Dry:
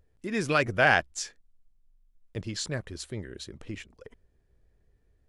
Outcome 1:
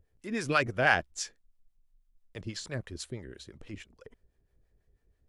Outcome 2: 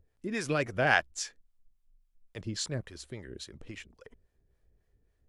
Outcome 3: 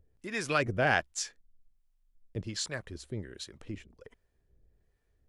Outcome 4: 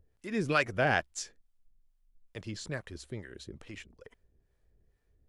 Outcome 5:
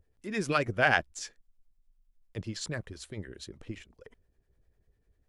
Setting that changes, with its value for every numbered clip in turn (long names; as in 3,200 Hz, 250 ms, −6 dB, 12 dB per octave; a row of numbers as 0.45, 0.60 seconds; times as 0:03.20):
two-band tremolo in antiphase, speed: 6.1, 3.6, 1.3, 2.3, 10 Hertz